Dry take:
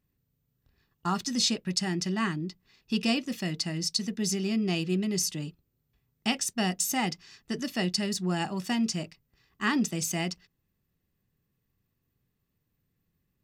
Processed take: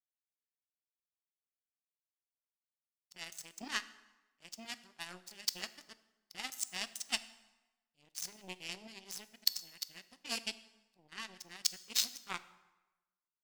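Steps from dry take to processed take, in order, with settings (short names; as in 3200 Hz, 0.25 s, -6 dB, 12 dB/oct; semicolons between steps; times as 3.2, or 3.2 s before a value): whole clip reversed; power-law curve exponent 3; tilt shelf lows -7 dB, about 870 Hz; plate-style reverb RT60 1.1 s, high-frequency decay 0.75×, DRR 13.5 dB; gain +1 dB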